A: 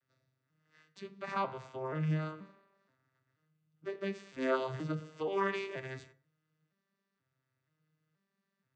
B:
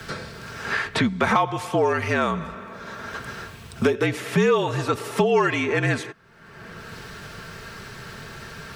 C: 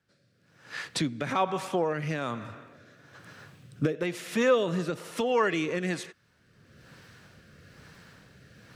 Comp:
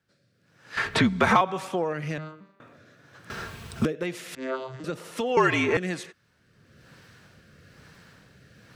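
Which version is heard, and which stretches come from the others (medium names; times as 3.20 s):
C
0.77–1.41 s: from B
2.18–2.60 s: from A
3.30–3.85 s: from B
4.35–4.84 s: from A
5.37–5.77 s: from B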